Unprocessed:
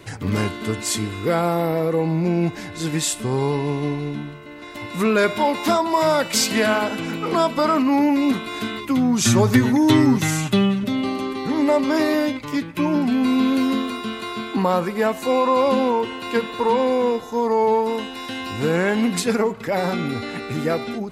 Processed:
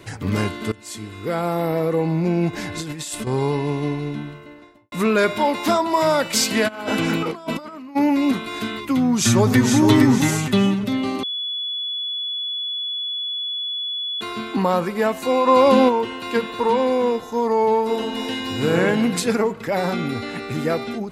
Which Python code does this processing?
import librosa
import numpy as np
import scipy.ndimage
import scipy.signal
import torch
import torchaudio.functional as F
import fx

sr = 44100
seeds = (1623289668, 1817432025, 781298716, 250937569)

y = fx.over_compress(x, sr, threshold_db=-29.0, ratio=-1.0, at=(2.53, 3.27))
y = fx.studio_fade_out(y, sr, start_s=4.32, length_s=0.6)
y = fx.over_compress(y, sr, threshold_db=-26.0, ratio=-0.5, at=(6.67, 7.95), fade=0.02)
y = fx.echo_throw(y, sr, start_s=9.0, length_s=0.82, ms=460, feedback_pct=35, wet_db=-5.0)
y = fx.env_flatten(y, sr, amount_pct=70, at=(15.47, 15.88), fade=0.02)
y = fx.reverb_throw(y, sr, start_s=17.81, length_s=0.94, rt60_s=1.7, drr_db=1.0)
y = fx.edit(y, sr, fx.fade_in_from(start_s=0.72, length_s=1.04, floor_db=-18.5),
    fx.bleep(start_s=11.23, length_s=2.98, hz=3410.0, db=-23.5), tone=tone)